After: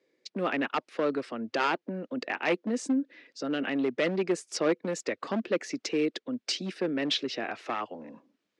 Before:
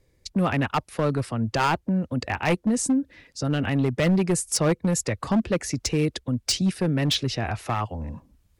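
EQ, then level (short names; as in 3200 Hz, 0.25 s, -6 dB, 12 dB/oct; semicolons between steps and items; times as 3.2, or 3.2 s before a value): HPF 280 Hz 24 dB/oct; air absorption 150 m; bell 880 Hz -6.5 dB 0.97 oct; 0.0 dB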